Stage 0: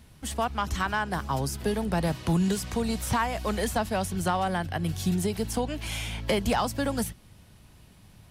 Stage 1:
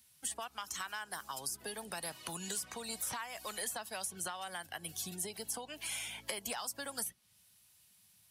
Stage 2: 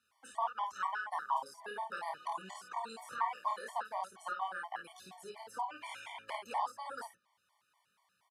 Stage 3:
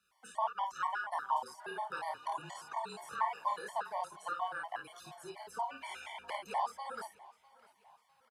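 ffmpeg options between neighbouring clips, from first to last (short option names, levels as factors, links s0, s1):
-filter_complex "[0:a]afftdn=nr=13:nf=-43,aderivative,acrossover=split=1800|6600[s0][s1][s2];[s0]acompressor=threshold=0.00224:ratio=4[s3];[s1]acompressor=threshold=0.001:ratio=4[s4];[s2]acompressor=threshold=0.00224:ratio=4[s5];[s3][s4][s5]amix=inputs=3:normalize=0,volume=3.55"
-filter_complex "[0:a]bandpass=f=1000:t=q:w=3:csg=0,asplit=2[s0][s1];[s1]aecho=0:1:26|53:0.562|0.596[s2];[s0][s2]amix=inputs=2:normalize=0,afftfilt=real='re*gt(sin(2*PI*4.2*pts/sr)*(1-2*mod(floor(b*sr/1024/600),2)),0)':imag='im*gt(sin(2*PI*4.2*pts/sr)*(1-2*mod(floor(b*sr/1024/600),2)),0)':win_size=1024:overlap=0.75,volume=3.98"
-af "afreqshift=-32,aecho=1:1:651|1302|1953:0.0794|0.0365|0.0168,volume=1.12"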